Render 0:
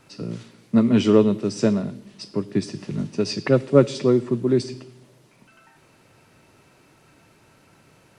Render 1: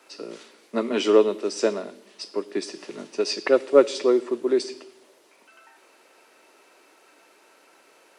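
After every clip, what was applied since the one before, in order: HPF 350 Hz 24 dB/oct; gain +1.5 dB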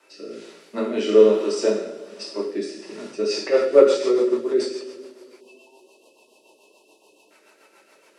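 two-slope reverb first 0.76 s, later 3.2 s, from -19 dB, DRR -4.5 dB; rotary speaker horn 1.2 Hz, later 7 Hz, at 2.9; spectral delete 5.4–7.31, 1100–2500 Hz; gain -2.5 dB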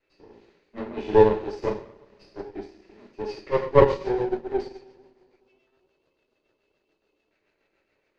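minimum comb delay 0.46 ms; air absorption 190 m; upward expander 1.5:1, over -36 dBFS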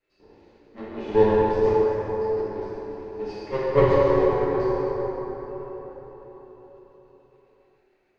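plate-style reverb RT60 4.9 s, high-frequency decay 0.45×, DRR -6 dB; gain -5.5 dB

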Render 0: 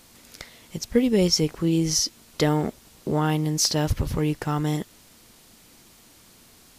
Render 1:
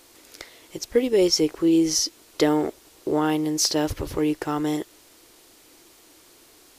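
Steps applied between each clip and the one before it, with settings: resonant low shelf 260 Hz -7 dB, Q 3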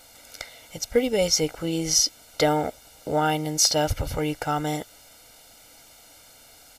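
comb 1.4 ms, depth 90%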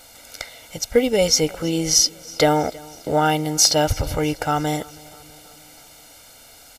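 feedback echo 0.323 s, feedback 60%, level -23 dB; gain +4.5 dB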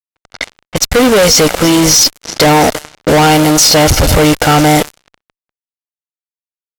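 fuzz box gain 35 dB, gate -33 dBFS; low-pass opened by the level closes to 1900 Hz, open at -18 dBFS; gain +7.5 dB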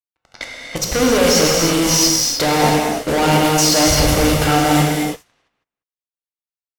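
non-linear reverb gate 0.35 s flat, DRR -2.5 dB; gain -10 dB

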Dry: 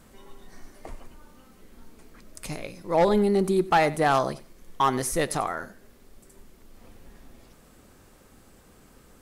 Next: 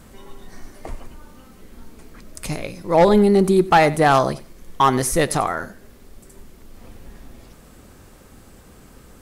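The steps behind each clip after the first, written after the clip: bell 65 Hz +4 dB 2.8 oct; gain +6.5 dB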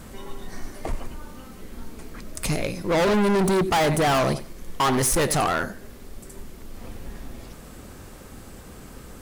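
hard clip -22.5 dBFS, distortion -4 dB; gain +4 dB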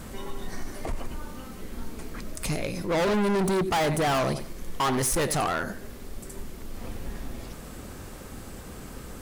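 limiter -24 dBFS, peak gain reduction 5.5 dB; gain +1.5 dB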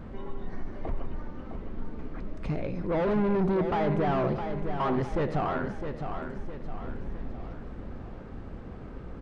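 tape spacing loss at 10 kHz 44 dB; feedback echo 0.66 s, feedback 45%, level -7.5 dB

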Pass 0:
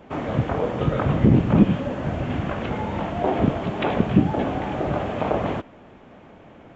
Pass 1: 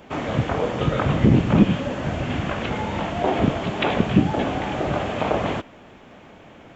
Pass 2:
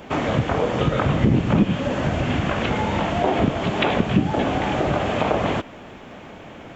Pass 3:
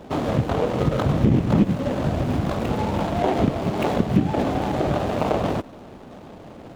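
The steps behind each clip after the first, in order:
high shelf 2300 Hz +10.5 dB
compressor 2:1, threshold -26 dBFS, peak gain reduction 9.5 dB; gain +6 dB
median filter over 25 samples

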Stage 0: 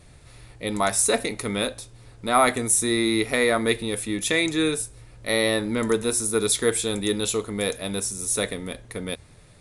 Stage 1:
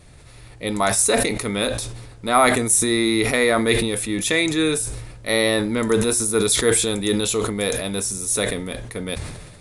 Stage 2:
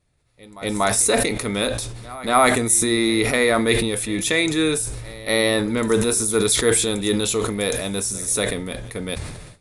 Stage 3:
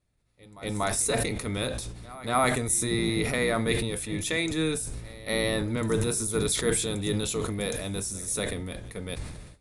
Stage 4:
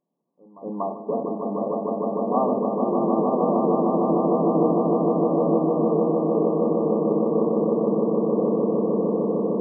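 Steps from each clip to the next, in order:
sustainer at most 44 dB/s; gain +2.5 dB
gate with hold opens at -30 dBFS; pre-echo 0.238 s -19.5 dB
octaver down 1 oct, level 0 dB; gain -8.5 dB
brick-wall FIR band-pass 160–1200 Hz; on a send: swelling echo 0.152 s, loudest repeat 8, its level -4.5 dB; on the sum: gain +2.5 dB

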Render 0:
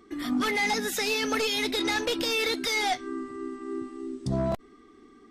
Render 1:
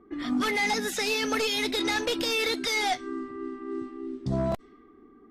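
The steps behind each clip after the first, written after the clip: low-pass opened by the level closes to 1100 Hz, open at -25 dBFS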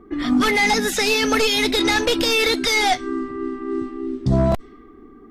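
low shelf 76 Hz +10.5 dB; gain +8.5 dB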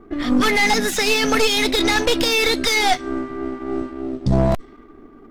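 half-wave gain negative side -7 dB; gain +3 dB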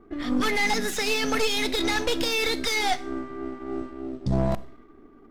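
Schroeder reverb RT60 0.51 s, combs from 30 ms, DRR 16.5 dB; gain -7.5 dB

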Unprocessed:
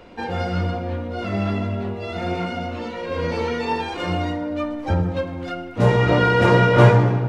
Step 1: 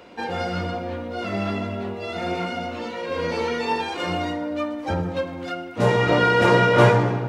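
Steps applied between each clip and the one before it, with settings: HPF 210 Hz 6 dB/oct; high shelf 4900 Hz +4 dB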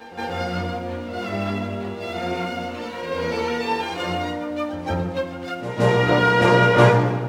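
crossover distortion -47.5 dBFS; pre-echo 0.172 s -12.5 dB; gain +1 dB

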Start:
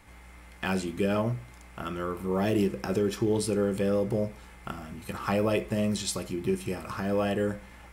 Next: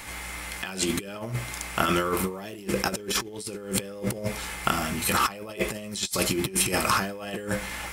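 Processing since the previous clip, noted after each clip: high shelf 2100 Hz +10 dB; negative-ratio compressor -33 dBFS, ratio -0.5; low shelf 220 Hz -6 dB; gain +7 dB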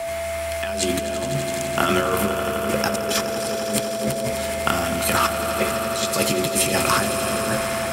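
swelling echo 84 ms, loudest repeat 5, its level -12.5 dB; whine 650 Hz -28 dBFS; frequency shift +18 Hz; gain +3 dB

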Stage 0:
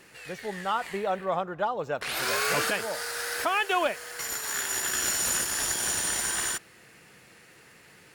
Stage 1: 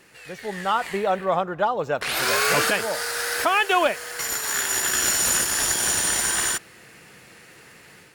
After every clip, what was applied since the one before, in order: AGC gain up to 6 dB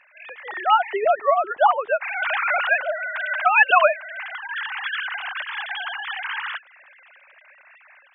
sine-wave speech; bell 490 Hz -14.5 dB 0.45 oct; gain +3.5 dB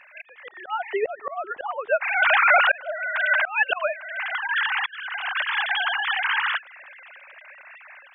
auto swell 0.604 s; gain +5.5 dB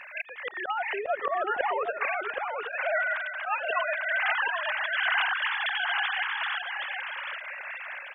negative-ratio compressor -31 dBFS, ratio -1; on a send: echo 0.773 s -5 dB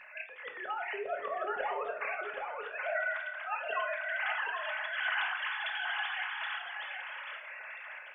reverb RT60 0.55 s, pre-delay 5 ms, DRR 3 dB; gain -8.5 dB

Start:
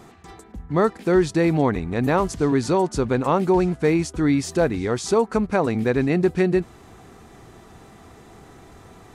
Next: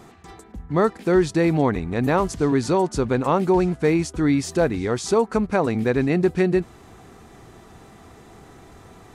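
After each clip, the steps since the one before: nothing audible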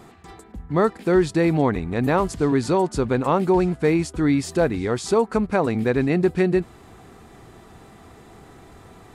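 bell 6000 Hz -5 dB 0.26 oct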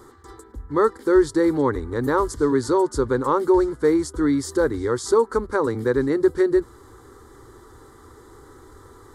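fixed phaser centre 690 Hz, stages 6; gain +2.5 dB

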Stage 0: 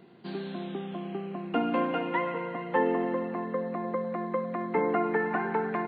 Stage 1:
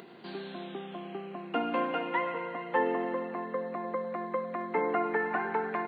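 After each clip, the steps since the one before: HPF 430 Hz 6 dB/oct; upward compressor, threshold -42 dBFS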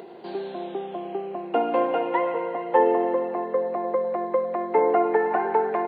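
band shelf 560 Hz +10.5 dB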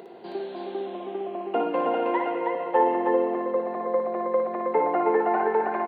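tapped delay 58/318 ms -5/-3.5 dB; gain -3 dB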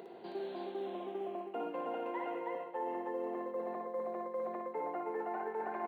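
short-mantissa float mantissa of 6-bit; reverse; compressor, threshold -30 dBFS, peak gain reduction 13.5 dB; reverse; gain -6 dB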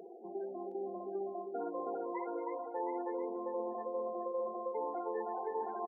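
loudest bins only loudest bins 16; echo 0.716 s -8 dB

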